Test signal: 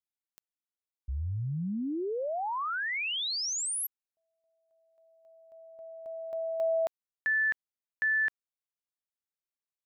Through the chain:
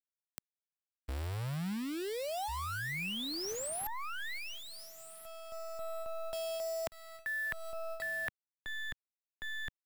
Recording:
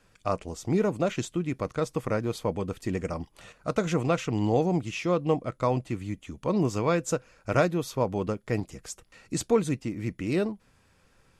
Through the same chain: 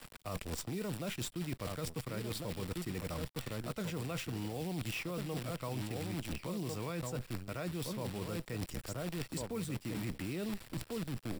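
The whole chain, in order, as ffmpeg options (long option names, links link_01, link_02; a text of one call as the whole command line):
ffmpeg -i in.wav -filter_complex "[0:a]asplit=2[link_01][link_02];[link_02]adelay=1399,volume=-8dB,highshelf=frequency=4000:gain=-31.5[link_03];[link_01][link_03]amix=inputs=2:normalize=0,acrusher=bits=7:dc=4:mix=0:aa=0.000001,acrossover=split=180|2000[link_04][link_05][link_06];[link_04]acompressor=threshold=-38dB:ratio=5[link_07];[link_05]acompressor=threshold=-45dB:ratio=2[link_08];[link_06]acompressor=threshold=-42dB:ratio=5[link_09];[link_07][link_08][link_09]amix=inputs=3:normalize=0,bandreject=frequency=6400:width=5.7,areverse,acompressor=threshold=-46dB:ratio=16:attack=3:release=177:knee=1:detection=peak,areverse,volume=12dB" out.wav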